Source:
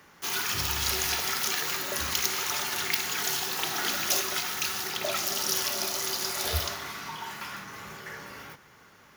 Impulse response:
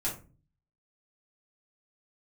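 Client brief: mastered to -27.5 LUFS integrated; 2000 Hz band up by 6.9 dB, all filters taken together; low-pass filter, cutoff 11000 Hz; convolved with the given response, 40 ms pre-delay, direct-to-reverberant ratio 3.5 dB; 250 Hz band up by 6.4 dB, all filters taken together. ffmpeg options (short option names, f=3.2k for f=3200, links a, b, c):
-filter_complex "[0:a]lowpass=11k,equalizer=f=250:t=o:g=9,equalizer=f=2k:t=o:g=8.5,asplit=2[a][b];[1:a]atrim=start_sample=2205,adelay=40[c];[b][c]afir=irnorm=-1:irlink=0,volume=-8dB[d];[a][d]amix=inputs=2:normalize=0,volume=-2.5dB"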